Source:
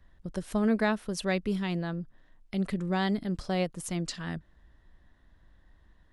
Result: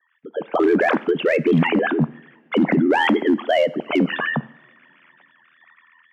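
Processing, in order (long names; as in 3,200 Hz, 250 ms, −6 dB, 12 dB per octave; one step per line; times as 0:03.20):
three sine waves on the formant tracks
elliptic high-pass filter 190 Hz, stop band 40 dB
automatic gain control gain up to 14 dB
brickwall limiter −14 dBFS, peak gain reduction 10 dB
ring modulation 41 Hz
hard clipping −16 dBFS, distortion −27 dB
coupled-rooms reverb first 0.67 s, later 3.3 s, from −22 dB, DRR 16.5 dB
level +6 dB
Ogg Vorbis 96 kbit/s 48,000 Hz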